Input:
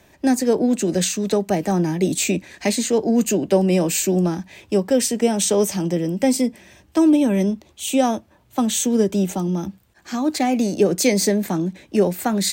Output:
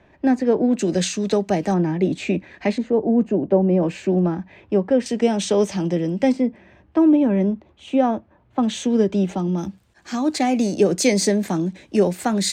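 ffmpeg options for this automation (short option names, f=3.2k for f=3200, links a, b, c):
-af "asetnsamples=n=441:p=0,asendcmd='0.79 lowpass f 6000;1.74 lowpass f 2400;2.78 lowpass f 1000;3.83 lowpass f 1900;5.06 lowpass f 4400;6.32 lowpass f 1800;8.63 lowpass f 3600;9.58 lowpass f 8900',lowpass=2.3k"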